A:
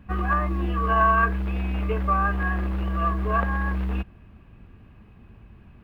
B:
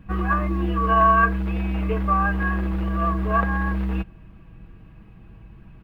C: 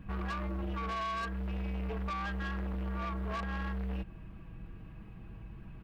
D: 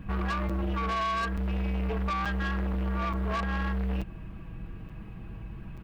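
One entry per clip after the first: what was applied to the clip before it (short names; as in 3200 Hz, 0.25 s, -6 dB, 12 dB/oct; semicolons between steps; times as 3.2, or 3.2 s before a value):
low shelf 190 Hz +5 dB; comb 6.2 ms, depth 53%
compressor 8:1, threshold -25 dBFS, peak gain reduction 12 dB; soft clip -31 dBFS, distortion -11 dB; gain -2 dB
crackling interface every 0.88 s, samples 256, zero, from 0.49; gain +6.5 dB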